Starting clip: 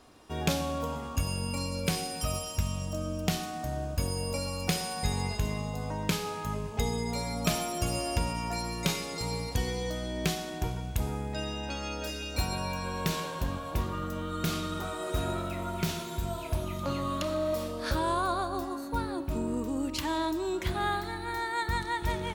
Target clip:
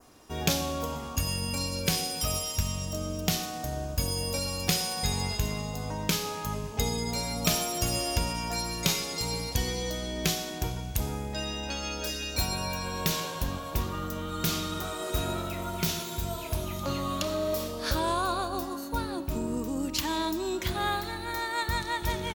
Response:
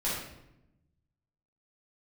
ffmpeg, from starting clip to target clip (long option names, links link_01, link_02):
-filter_complex "[0:a]aexciter=amount=2.2:drive=3.1:freq=5300,adynamicequalizer=threshold=0.00282:dfrequency=3700:dqfactor=1.3:tfrequency=3700:tqfactor=1.3:attack=5:release=100:ratio=0.375:range=2.5:mode=boostabove:tftype=bell,asplit=2[link_01][link_02];[link_02]asetrate=29433,aresample=44100,atempo=1.49831,volume=-15dB[link_03];[link_01][link_03]amix=inputs=2:normalize=0"